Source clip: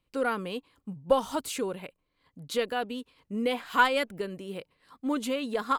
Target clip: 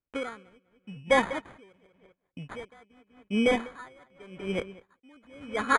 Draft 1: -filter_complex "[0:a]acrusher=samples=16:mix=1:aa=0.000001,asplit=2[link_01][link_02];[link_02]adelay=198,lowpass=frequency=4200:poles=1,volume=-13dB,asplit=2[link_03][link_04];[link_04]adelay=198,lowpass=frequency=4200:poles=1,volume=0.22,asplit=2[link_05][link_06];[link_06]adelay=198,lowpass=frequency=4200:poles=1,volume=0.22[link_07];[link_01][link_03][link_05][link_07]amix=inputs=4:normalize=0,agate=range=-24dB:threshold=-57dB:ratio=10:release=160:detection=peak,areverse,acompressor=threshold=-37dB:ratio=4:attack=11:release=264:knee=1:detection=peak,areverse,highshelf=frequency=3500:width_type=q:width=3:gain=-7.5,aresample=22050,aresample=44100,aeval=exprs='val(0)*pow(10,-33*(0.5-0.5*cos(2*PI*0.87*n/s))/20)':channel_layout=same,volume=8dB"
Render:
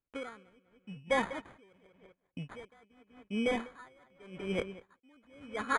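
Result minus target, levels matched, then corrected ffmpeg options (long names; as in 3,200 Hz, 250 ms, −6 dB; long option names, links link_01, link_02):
downward compressor: peak gain reduction +7.5 dB
-filter_complex "[0:a]acrusher=samples=16:mix=1:aa=0.000001,asplit=2[link_01][link_02];[link_02]adelay=198,lowpass=frequency=4200:poles=1,volume=-13dB,asplit=2[link_03][link_04];[link_04]adelay=198,lowpass=frequency=4200:poles=1,volume=0.22,asplit=2[link_05][link_06];[link_06]adelay=198,lowpass=frequency=4200:poles=1,volume=0.22[link_07];[link_01][link_03][link_05][link_07]amix=inputs=4:normalize=0,agate=range=-24dB:threshold=-57dB:ratio=10:release=160:detection=peak,areverse,acompressor=threshold=-27dB:ratio=4:attack=11:release=264:knee=1:detection=peak,areverse,highshelf=frequency=3500:width_type=q:width=3:gain=-7.5,aresample=22050,aresample=44100,aeval=exprs='val(0)*pow(10,-33*(0.5-0.5*cos(2*PI*0.87*n/s))/20)':channel_layout=same,volume=8dB"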